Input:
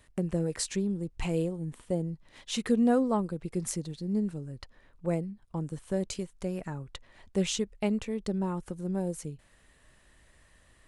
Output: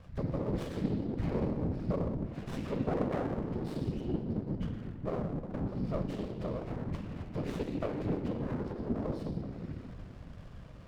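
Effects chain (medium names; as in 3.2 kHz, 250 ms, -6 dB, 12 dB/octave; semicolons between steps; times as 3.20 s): knee-point frequency compression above 1.4 kHz 1.5:1; compression 2:1, threshold -52 dBFS, peak gain reduction 17 dB; distance through air 200 m; reverberation RT60 1.8 s, pre-delay 24 ms, DRR 1.5 dB; whisper effect; sliding maximum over 17 samples; trim +6.5 dB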